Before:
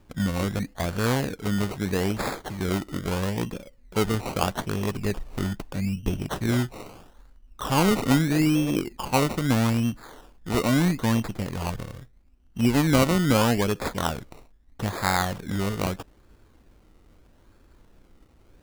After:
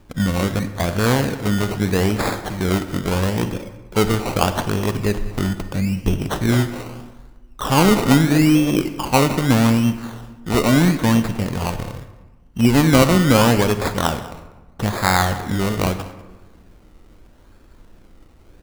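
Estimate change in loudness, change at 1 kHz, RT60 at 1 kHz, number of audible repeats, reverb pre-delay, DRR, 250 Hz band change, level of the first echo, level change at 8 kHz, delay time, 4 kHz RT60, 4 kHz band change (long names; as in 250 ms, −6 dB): +7.0 dB, +7.0 dB, 1.2 s, 1, 37 ms, 10.0 dB, +7.0 dB, −19.5 dB, +6.5 dB, 194 ms, 0.65 s, +7.0 dB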